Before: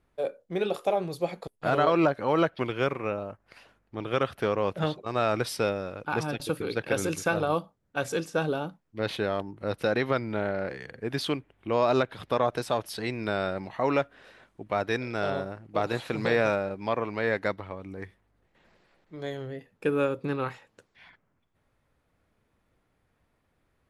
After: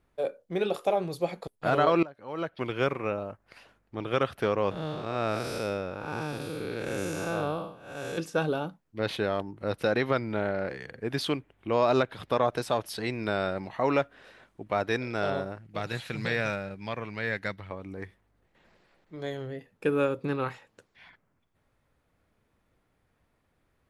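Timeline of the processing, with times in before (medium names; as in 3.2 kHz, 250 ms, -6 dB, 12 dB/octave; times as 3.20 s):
2.03–2.75 s: fade in quadratic, from -21 dB
4.71–8.18 s: spectral blur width 237 ms
15.58–17.71 s: high-order bell 550 Hz -8 dB 2.6 oct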